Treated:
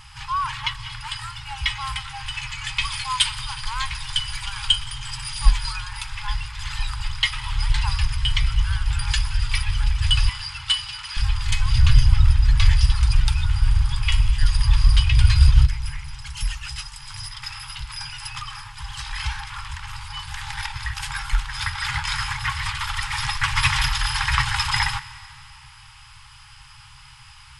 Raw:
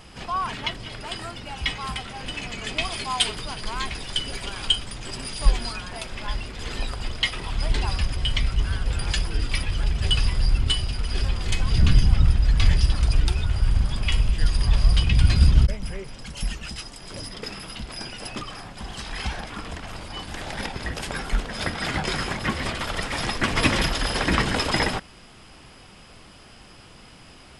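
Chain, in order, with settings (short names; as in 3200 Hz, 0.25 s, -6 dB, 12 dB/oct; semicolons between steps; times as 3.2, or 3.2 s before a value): FFT band-reject 150–790 Hz; 10.29–11.17 weighting filter A; reverb RT60 2.5 s, pre-delay 0.109 s, DRR 16.5 dB; gain +2.5 dB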